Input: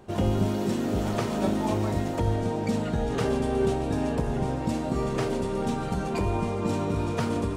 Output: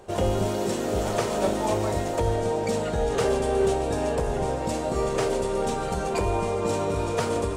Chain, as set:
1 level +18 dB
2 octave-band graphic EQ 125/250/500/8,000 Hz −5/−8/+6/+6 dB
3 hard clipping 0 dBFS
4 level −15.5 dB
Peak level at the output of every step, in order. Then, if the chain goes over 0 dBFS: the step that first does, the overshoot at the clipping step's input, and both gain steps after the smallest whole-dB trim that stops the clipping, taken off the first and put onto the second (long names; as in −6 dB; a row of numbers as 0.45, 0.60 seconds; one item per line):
+5.5, +5.5, 0.0, −15.5 dBFS
step 1, 5.5 dB
step 1 +12 dB, step 4 −9.5 dB